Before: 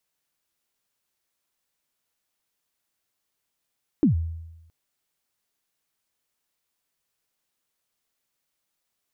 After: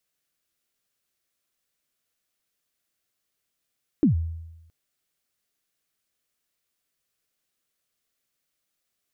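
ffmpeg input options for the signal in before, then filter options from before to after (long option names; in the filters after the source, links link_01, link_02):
-f lavfi -i "aevalsrc='0.224*pow(10,-3*t/0.99)*sin(2*PI*(340*0.118/log(82/340)*(exp(log(82/340)*min(t,0.118)/0.118)-1)+82*max(t-0.118,0)))':duration=0.67:sample_rate=44100"
-af "equalizer=frequency=910:width=4.4:gain=-9.5"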